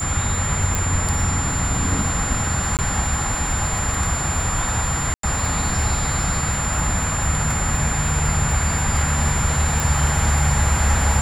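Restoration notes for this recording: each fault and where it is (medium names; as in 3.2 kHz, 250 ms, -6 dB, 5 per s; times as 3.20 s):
crackle 45 per s -27 dBFS
whine 7.2 kHz -25 dBFS
0.75 s: pop
2.77–2.79 s: dropout 18 ms
5.14–5.23 s: dropout 93 ms
9.80 s: pop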